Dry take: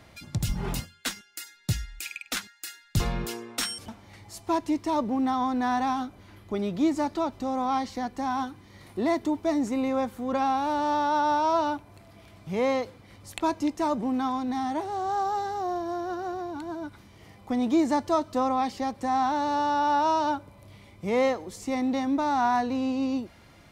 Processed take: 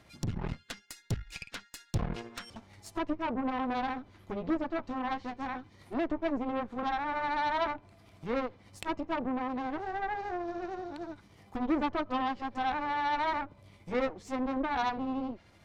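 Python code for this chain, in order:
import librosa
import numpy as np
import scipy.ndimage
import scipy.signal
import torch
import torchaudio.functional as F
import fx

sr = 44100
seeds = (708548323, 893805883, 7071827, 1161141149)

y = fx.env_lowpass_down(x, sr, base_hz=1700.0, full_db=-24.5)
y = fx.stretch_grains(y, sr, factor=0.66, grain_ms=151.0)
y = fx.cheby_harmonics(y, sr, harmonics=(8,), levels_db=(-16,), full_scale_db=-13.0)
y = F.gain(torch.from_numpy(y), -5.5).numpy()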